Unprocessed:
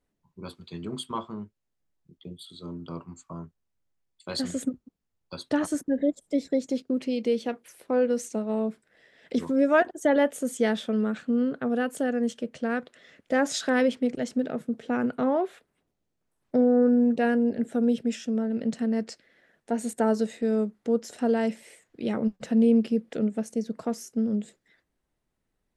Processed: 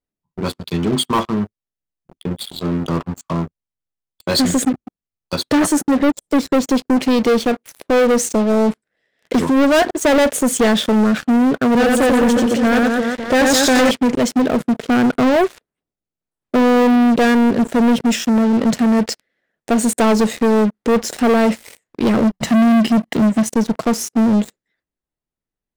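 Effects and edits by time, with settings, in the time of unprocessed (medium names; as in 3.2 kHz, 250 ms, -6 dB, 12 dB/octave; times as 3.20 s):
11.66–13.91 s: reverse bouncing-ball echo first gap 90 ms, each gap 1.3×, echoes 5
22.33–23.51 s: comb 1 ms, depth 68%
whole clip: waveshaping leveller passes 5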